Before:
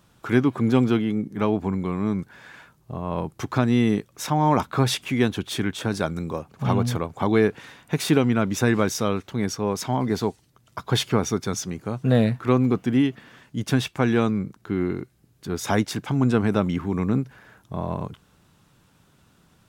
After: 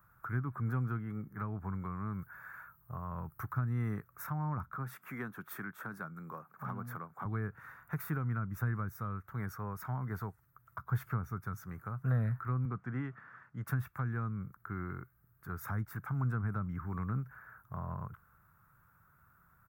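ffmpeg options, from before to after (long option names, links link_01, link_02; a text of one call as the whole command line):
ffmpeg -i in.wav -filter_complex "[0:a]asettb=1/sr,asplit=3[link_01][link_02][link_03];[link_01]atrim=end=2.134[link_04];[link_02]atrim=start=2.13:end=3.73,asetpts=PTS-STARTPTS,afade=type=in:duration=0.004:curve=qsin,afade=type=out:start_time=1.596:duration=0.004:curve=qsin,highshelf=frequency=11000:gain=10[link_05];[link_03]atrim=start=3.726[link_06];[link_04][link_05]acrossfade=duration=0.004:curve1=hsin:curve2=qsin[link_07];[link_07][link_06]acrossfade=duration=0.004:curve1=qsin:curve2=hsin,asettb=1/sr,asplit=3[link_08][link_09][link_10];[link_08]atrim=end=4.754[link_11];[link_09]atrim=start=4.75:end=7.25,asetpts=PTS-STARTPTS,afade=type=in:duration=0.004:curve=qsin,afade=type=out:start_time=2.496:duration=0.004:curve=qsin,highpass=frequency=170:width=0.5412,highpass=frequency=170:width=1.3066[link_12];[link_10]atrim=start=7.246[link_13];[link_11][link_12]acrossfade=duration=0.004:curve1=hsin:curve2=qsin[link_14];[link_14][link_13]acrossfade=duration=0.004:curve1=qsin:curve2=hsin,asettb=1/sr,asplit=3[link_15][link_16][link_17];[link_15]atrim=end=12.654[link_18];[link_16]atrim=start=12.65:end=13.67,asetpts=PTS-STARTPTS,afade=type=in:duration=0.004:curve=qsin,afade=type=out:start_time=1.016:duration=0.004:curve=qsin,highpass=110,lowpass=4700[link_19];[link_17]atrim=start=13.666[link_20];[link_18][link_19]acrossfade=duration=0.004:curve1=hsin:curve2=qsin[link_21];[link_21][link_20]acrossfade=duration=0.004:curve1=qsin:curve2=hsin,firequalizer=gain_entry='entry(110,0);entry(250,-14);entry(890,-3);entry(1300,10);entry(3000,-24);entry(8900,-11);entry(15000,11)':delay=0.05:min_phase=1,acrossover=split=270[link_22][link_23];[link_23]acompressor=threshold=-35dB:ratio=6[link_24];[link_22][link_24]amix=inputs=2:normalize=0,volume=-6.5dB" out.wav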